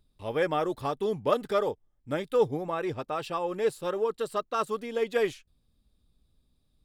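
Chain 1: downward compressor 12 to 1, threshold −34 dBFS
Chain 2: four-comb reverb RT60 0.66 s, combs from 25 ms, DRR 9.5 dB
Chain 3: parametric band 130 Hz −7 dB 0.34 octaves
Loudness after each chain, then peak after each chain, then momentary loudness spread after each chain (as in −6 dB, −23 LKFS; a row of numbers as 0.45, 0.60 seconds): −39.5, −29.5, −30.0 LKFS; −24.5, −12.0, −13.0 dBFS; 4, 7, 7 LU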